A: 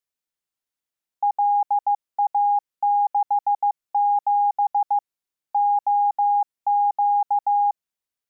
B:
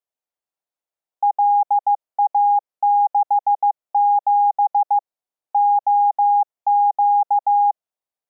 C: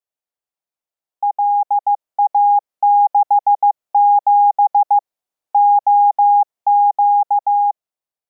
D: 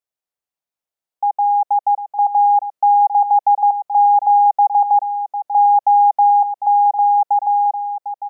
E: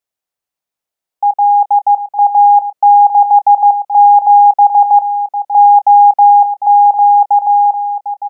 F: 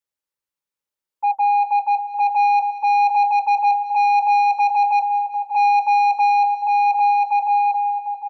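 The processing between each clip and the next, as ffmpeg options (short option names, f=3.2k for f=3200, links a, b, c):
-af "equalizer=f=680:t=o:w=1.5:g=13,volume=-7.5dB"
-af "dynaudnorm=f=780:g=5:m=6dB,volume=-1.5dB"
-af "aecho=1:1:751:0.299"
-filter_complex "[0:a]asplit=2[a][b];[b]adelay=27,volume=-14dB[c];[a][c]amix=inputs=2:normalize=0,volume=5dB"
-af "asuperstop=centerf=700:order=20:qfactor=4.5,asoftclip=type=tanh:threshold=-7.5dB,aecho=1:1:191|382|573|764|955:0.178|0.0907|0.0463|0.0236|0.012,volume=-5dB"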